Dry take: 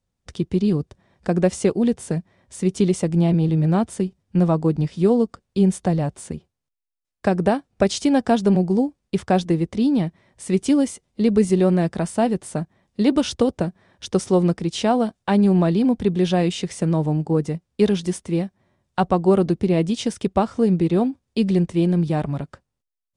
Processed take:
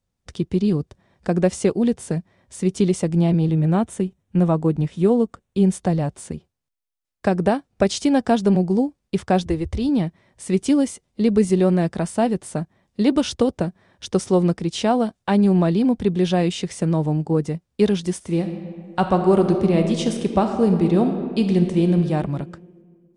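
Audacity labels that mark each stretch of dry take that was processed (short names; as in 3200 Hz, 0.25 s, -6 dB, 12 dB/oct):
3.510000	5.620000	bell 4800 Hz -10 dB 0.31 oct
9.460000	9.890000	resonant low shelf 120 Hz +13 dB, Q 3
18.160000	21.970000	reverb throw, RT60 2 s, DRR 5 dB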